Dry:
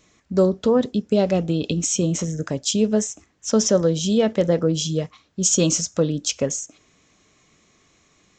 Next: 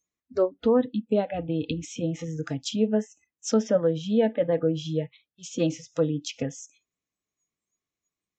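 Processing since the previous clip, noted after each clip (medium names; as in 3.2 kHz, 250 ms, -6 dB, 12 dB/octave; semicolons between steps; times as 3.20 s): low-pass that closes with the level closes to 2.2 kHz, closed at -18.5 dBFS; spectral noise reduction 29 dB; trim -3 dB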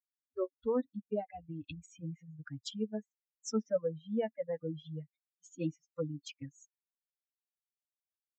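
expander on every frequency bin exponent 3; trim -6.5 dB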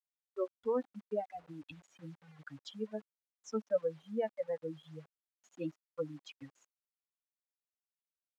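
bit crusher 10-bit; band-pass filter 920 Hz, Q 0.54; trim +1.5 dB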